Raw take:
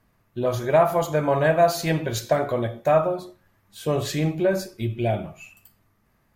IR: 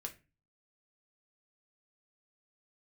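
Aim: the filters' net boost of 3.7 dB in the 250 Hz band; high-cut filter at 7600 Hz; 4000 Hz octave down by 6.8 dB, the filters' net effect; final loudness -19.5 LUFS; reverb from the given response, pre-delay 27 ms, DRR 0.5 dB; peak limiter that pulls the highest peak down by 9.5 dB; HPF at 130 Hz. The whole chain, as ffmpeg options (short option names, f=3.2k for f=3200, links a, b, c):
-filter_complex "[0:a]highpass=130,lowpass=7.6k,equalizer=f=250:t=o:g=6.5,equalizer=f=4k:t=o:g=-8,alimiter=limit=-16dB:level=0:latency=1,asplit=2[a][b];[1:a]atrim=start_sample=2205,adelay=27[c];[b][c]afir=irnorm=-1:irlink=0,volume=2dB[d];[a][d]amix=inputs=2:normalize=0,volume=4.5dB"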